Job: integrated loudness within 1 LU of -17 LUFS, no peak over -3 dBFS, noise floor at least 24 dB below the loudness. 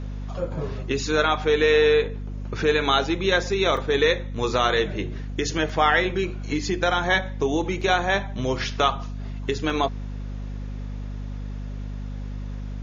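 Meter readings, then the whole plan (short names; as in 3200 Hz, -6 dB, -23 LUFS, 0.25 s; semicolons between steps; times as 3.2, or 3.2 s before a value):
dropouts 4; longest dropout 3.1 ms; hum 50 Hz; harmonics up to 250 Hz; hum level -29 dBFS; loudness -23.0 LUFS; peak -6.0 dBFS; loudness target -17.0 LUFS
-> interpolate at 3.77/5.69/7.81/9.7, 3.1 ms; de-hum 50 Hz, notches 5; gain +6 dB; limiter -3 dBFS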